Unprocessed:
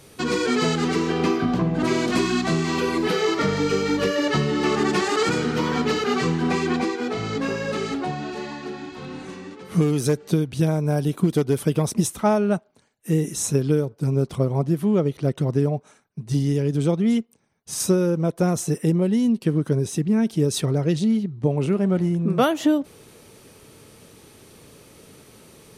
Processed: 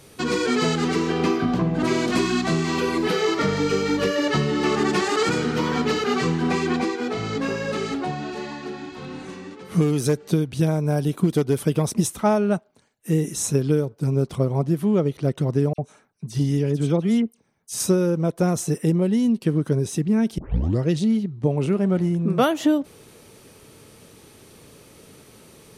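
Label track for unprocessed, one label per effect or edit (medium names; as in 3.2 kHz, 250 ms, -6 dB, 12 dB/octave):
15.730000	17.770000	phase dispersion lows, late by 54 ms, half as late at 2.6 kHz
20.380000	20.380000	tape start 0.46 s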